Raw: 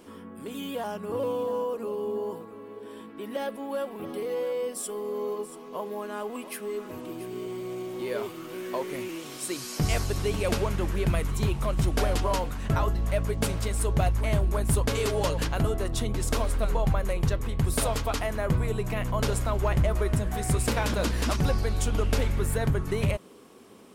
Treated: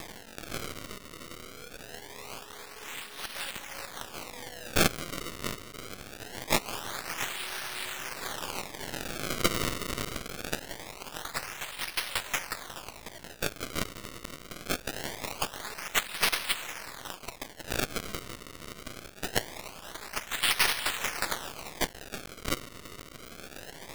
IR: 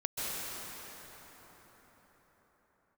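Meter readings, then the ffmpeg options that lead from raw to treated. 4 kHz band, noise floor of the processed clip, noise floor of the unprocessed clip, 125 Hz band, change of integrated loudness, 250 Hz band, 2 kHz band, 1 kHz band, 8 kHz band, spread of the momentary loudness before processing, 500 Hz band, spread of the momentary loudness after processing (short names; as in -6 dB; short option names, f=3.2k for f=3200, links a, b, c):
+5.0 dB, -49 dBFS, -44 dBFS, -16.5 dB, -4.5 dB, -9.0 dB, +3.5 dB, -3.5 dB, 0.0 dB, 10 LU, -11.0 dB, 16 LU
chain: -filter_complex "[0:a]areverse,acompressor=threshold=-34dB:ratio=10,areverse,lowshelf=f=210:g=-11.5,asplit=2[a][b];[1:a]atrim=start_sample=2205[c];[b][c]afir=irnorm=-1:irlink=0,volume=-13dB[d];[a][d]amix=inputs=2:normalize=0,aexciter=amount=10.3:drive=8.4:freq=4.3k,acompressor=mode=upward:threshold=-29dB:ratio=2.5,acrusher=samples=30:mix=1:aa=0.000001:lfo=1:lforange=48:lforate=0.23,aeval=exprs='max(val(0),0)':c=same,tiltshelf=f=970:g=-7,volume=-4.5dB"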